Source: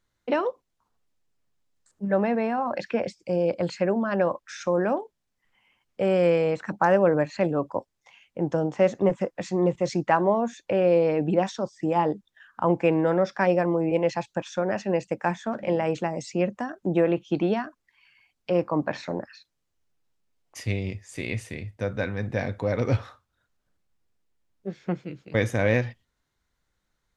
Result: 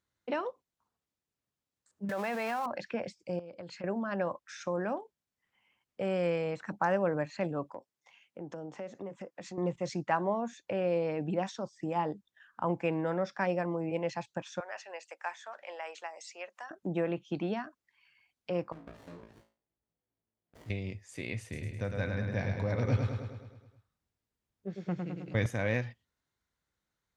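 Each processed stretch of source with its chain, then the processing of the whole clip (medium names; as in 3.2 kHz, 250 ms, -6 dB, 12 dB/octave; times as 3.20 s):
2.09–2.66 s: jump at every zero crossing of -38.5 dBFS + high-pass 1 kHz 6 dB/octave + level flattener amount 100%
3.39–3.84 s: low-pass 7 kHz + compression 12:1, threshold -33 dBFS
7.64–9.58 s: high-pass 140 Hz + compression 3:1, threshold -34 dBFS
14.60–16.71 s: Bessel high-pass 1 kHz, order 4 + upward compressor, threshold -41 dBFS
18.72–20.70 s: compression 3:1, threshold -43 dBFS + flutter echo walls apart 3.1 m, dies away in 0.38 s + sliding maximum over 33 samples
21.42–25.46 s: bass shelf 100 Hz +11.5 dB + feedback delay 105 ms, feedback 57%, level -4.5 dB
whole clip: high-pass 61 Hz; dynamic bell 400 Hz, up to -4 dB, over -31 dBFS, Q 1; trim -7 dB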